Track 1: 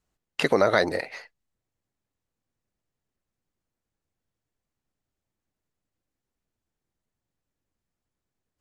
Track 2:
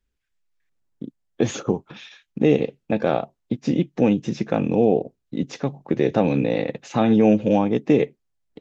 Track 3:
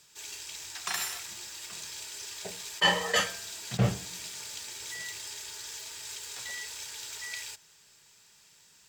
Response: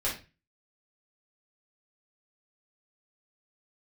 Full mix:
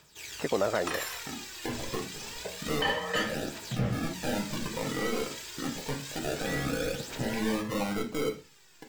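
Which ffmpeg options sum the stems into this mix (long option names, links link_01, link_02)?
-filter_complex "[0:a]lowpass=1400,volume=-7dB[link_01];[1:a]alimiter=limit=-13dB:level=0:latency=1:release=166,acrusher=samples=35:mix=1:aa=0.000001:lfo=1:lforange=21:lforate=0.35,asoftclip=type=hard:threshold=-18.5dB,adelay=250,volume=-11dB,asplit=2[link_02][link_03];[link_03]volume=-5.5dB[link_04];[2:a]equalizer=frequency=8000:width=0.49:gain=-8,volume=2dB,asplit=2[link_05][link_06];[link_06]volume=-14dB[link_07];[link_02][link_05]amix=inputs=2:normalize=0,aphaser=in_gain=1:out_gain=1:delay=3.1:decay=0.6:speed=0.28:type=triangular,acompressor=threshold=-33dB:ratio=6,volume=0dB[link_08];[3:a]atrim=start_sample=2205[link_09];[link_04][link_07]amix=inputs=2:normalize=0[link_10];[link_10][link_09]afir=irnorm=-1:irlink=0[link_11];[link_01][link_08][link_11]amix=inputs=3:normalize=0"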